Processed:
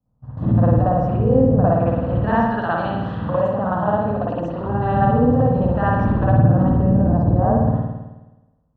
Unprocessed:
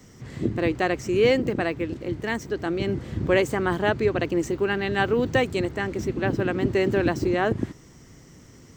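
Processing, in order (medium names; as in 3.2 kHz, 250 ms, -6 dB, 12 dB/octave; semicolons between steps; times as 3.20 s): level-controlled noise filter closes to 640 Hz, open at -18 dBFS; gate -36 dBFS, range -31 dB; low-pass that closes with the level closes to 450 Hz, closed at -19.5 dBFS; 2.45–4.61 s: tilt EQ +4 dB/octave; peak limiter -19 dBFS, peak gain reduction 8 dB; static phaser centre 900 Hz, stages 4; spring tank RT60 1.1 s, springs 53 ms, chirp 20 ms, DRR -8.5 dB; trim +9 dB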